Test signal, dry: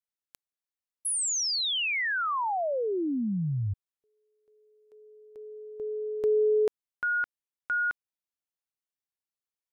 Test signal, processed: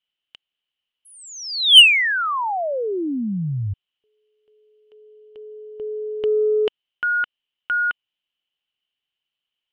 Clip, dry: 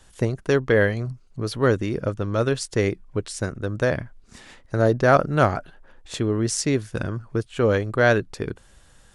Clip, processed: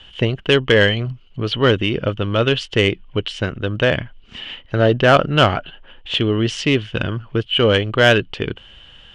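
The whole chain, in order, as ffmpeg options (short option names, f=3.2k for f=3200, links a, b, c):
-af "lowpass=f=3k:t=q:w=15,acontrast=47,volume=-1dB"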